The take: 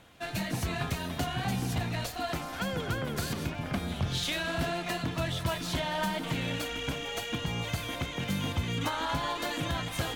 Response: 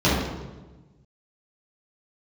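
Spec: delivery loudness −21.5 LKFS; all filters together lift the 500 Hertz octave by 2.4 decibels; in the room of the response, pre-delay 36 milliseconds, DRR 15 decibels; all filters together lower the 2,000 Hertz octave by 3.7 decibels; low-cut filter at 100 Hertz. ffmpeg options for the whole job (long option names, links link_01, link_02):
-filter_complex "[0:a]highpass=100,equalizer=frequency=500:width_type=o:gain=3.5,equalizer=frequency=2000:width_type=o:gain=-5,asplit=2[link_01][link_02];[1:a]atrim=start_sample=2205,adelay=36[link_03];[link_02][link_03]afir=irnorm=-1:irlink=0,volume=-35dB[link_04];[link_01][link_04]amix=inputs=2:normalize=0,volume=11dB"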